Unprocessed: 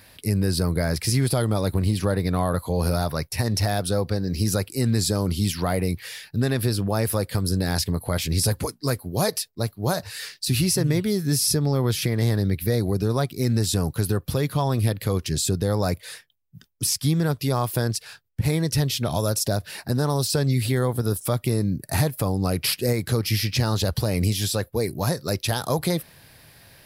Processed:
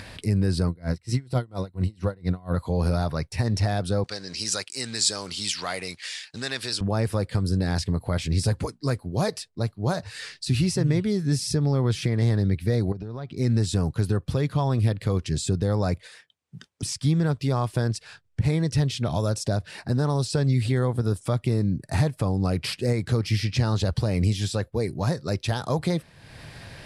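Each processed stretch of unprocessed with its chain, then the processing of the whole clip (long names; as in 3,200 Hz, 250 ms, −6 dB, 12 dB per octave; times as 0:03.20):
0:00.67–0:02.56: EQ curve with evenly spaced ripples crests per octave 2, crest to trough 7 dB + tremolo with a sine in dB 4.3 Hz, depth 29 dB
0:04.04–0:06.81: mu-law and A-law mismatch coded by A + meter weighting curve ITU-R 468
0:12.92–0:13.37: low-pass filter 4,200 Hz + downward compressor 12 to 1, threshold −29 dBFS
0:16.07–0:16.83: high-pass filter 340 Hz 6 dB per octave + downward compressor 2 to 1, threshold −42 dBFS
whole clip: Chebyshev low-pass filter 8,600 Hz, order 3; bass and treble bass +3 dB, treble −4 dB; upward compression, threshold −28 dBFS; level −2.5 dB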